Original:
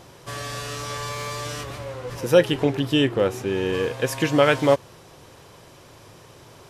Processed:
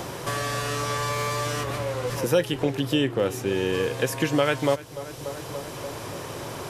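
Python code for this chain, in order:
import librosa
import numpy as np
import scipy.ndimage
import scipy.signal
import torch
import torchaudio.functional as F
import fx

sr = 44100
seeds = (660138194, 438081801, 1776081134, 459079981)

p1 = fx.high_shelf(x, sr, hz=6900.0, db=7.5)
p2 = p1 + fx.echo_filtered(p1, sr, ms=291, feedback_pct=62, hz=1800.0, wet_db=-18.5, dry=0)
p3 = fx.band_squash(p2, sr, depth_pct=70)
y = F.gain(torch.from_numpy(p3), -2.5).numpy()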